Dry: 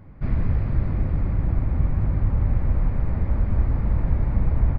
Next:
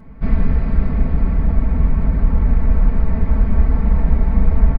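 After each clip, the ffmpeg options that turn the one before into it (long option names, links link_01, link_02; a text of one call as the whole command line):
ffmpeg -i in.wav -af "aecho=1:1:4.5:0.91,volume=4dB" out.wav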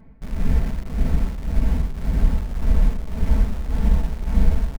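ffmpeg -i in.wav -filter_complex "[0:a]equalizer=frequency=1200:width=6.6:gain=-9.5,tremolo=f=1.8:d=0.77,asplit=2[link_01][link_02];[link_02]acrusher=bits=4:mix=0:aa=0.000001,volume=-4.5dB[link_03];[link_01][link_03]amix=inputs=2:normalize=0,volume=-6dB" out.wav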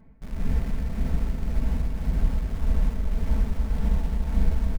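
ffmpeg -i in.wav -af "aecho=1:1:288:0.562,volume=-5.5dB" out.wav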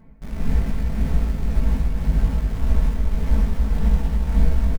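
ffmpeg -i in.wav -filter_complex "[0:a]asplit=2[link_01][link_02];[link_02]adelay=19,volume=-5dB[link_03];[link_01][link_03]amix=inputs=2:normalize=0,volume=3.5dB" out.wav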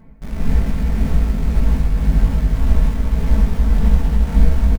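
ffmpeg -i in.wav -af "aecho=1:1:359:0.376,volume=4dB" out.wav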